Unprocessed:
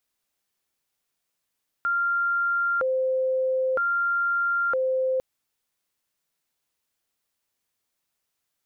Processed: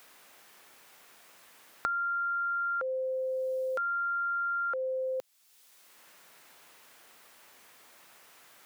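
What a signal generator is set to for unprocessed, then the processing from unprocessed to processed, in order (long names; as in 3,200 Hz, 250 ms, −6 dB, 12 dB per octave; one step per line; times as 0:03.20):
siren hi-lo 520–1,390 Hz 0.52 per second sine −21 dBFS 3.35 s
brickwall limiter −27.5 dBFS
low-shelf EQ 310 Hz −11 dB
multiband upward and downward compressor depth 100%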